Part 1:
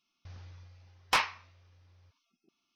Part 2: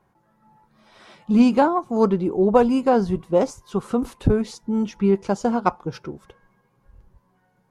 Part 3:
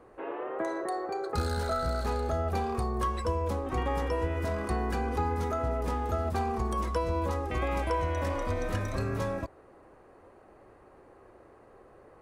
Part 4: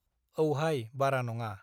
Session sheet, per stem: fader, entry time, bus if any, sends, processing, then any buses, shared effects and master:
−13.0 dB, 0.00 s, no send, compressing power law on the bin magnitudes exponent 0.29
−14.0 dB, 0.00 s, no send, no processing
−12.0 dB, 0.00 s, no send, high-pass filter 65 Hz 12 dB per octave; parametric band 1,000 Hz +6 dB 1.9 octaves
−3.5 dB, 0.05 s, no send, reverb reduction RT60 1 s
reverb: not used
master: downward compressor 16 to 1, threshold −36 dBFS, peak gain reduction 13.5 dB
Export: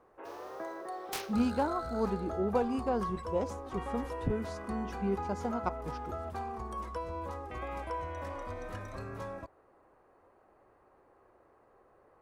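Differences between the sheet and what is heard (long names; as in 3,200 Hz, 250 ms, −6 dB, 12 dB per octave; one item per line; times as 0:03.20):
stem 3: missing high-pass filter 65 Hz 12 dB per octave
stem 4: muted
master: missing downward compressor 16 to 1, threshold −36 dBFS, peak gain reduction 13.5 dB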